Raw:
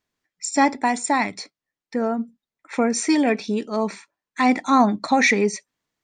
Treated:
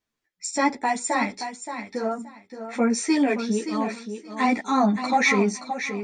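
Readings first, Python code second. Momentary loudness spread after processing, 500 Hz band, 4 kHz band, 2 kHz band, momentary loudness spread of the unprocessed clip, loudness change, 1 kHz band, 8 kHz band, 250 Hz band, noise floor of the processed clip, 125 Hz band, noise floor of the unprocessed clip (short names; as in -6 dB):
14 LU, -2.5 dB, -2.5 dB, -2.5 dB, 14 LU, -3.0 dB, -3.0 dB, -2.5 dB, -2.5 dB, -83 dBFS, n/a, under -85 dBFS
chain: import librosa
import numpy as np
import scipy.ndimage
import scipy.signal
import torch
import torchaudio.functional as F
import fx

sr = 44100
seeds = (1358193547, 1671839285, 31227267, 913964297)

p1 = x + fx.echo_feedback(x, sr, ms=574, feedback_pct=20, wet_db=-9, dry=0)
y = fx.ensemble(p1, sr)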